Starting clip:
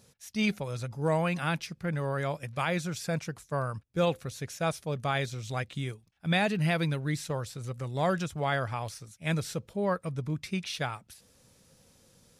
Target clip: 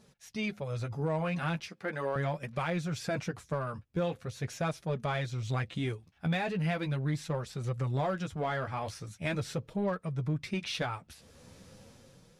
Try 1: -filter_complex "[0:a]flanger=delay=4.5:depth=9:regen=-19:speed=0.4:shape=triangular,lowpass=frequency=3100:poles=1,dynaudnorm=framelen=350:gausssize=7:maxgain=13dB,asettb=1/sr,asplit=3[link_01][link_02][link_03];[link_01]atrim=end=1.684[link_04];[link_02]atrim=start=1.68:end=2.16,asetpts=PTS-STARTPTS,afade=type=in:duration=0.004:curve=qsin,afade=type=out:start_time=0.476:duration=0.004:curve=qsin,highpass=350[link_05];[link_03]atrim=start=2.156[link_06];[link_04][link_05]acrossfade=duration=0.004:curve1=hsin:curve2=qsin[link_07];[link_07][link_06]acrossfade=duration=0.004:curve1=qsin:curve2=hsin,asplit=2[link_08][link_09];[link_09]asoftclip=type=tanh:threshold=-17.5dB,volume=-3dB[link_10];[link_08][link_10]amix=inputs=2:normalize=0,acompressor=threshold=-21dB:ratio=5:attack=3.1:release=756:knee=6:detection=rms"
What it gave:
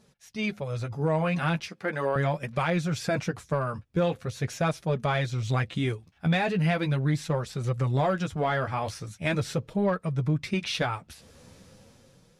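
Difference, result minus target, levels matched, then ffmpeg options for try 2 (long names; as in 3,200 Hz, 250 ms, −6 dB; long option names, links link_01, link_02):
downward compressor: peak gain reduction −5.5 dB; soft clipping: distortion −5 dB
-filter_complex "[0:a]flanger=delay=4.5:depth=9:regen=-19:speed=0.4:shape=triangular,lowpass=frequency=3100:poles=1,dynaudnorm=framelen=350:gausssize=7:maxgain=13dB,asettb=1/sr,asplit=3[link_01][link_02][link_03];[link_01]atrim=end=1.684[link_04];[link_02]atrim=start=1.68:end=2.16,asetpts=PTS-STARTPTS,afade=type=in:duration=0.004:curve=qsin,afade=type=out:start_time=0.476:duration=0.004:curve=qsin,highpass=350[link_05];[link_03]atrim=start=2.156[link_06];[link_04][link_05]acrossfade=duration=0.004:curve1=hsin:curve2=qsin[link_07];[link_07][link_06]acrossfade=duration=0.004:curve1=qsin:curve2=hsin,asplit=2[link_08][link_09];[link_09]asoftclip=type=tanh:threshold=-23.5dB,volume=-3dB[link_10];[link_08][link_10]amix=inputs=2:normalize=0,acompressor=threshold=-28.5dB:ratio=5:attack=3.1:release=756:knee=6:detection=rms"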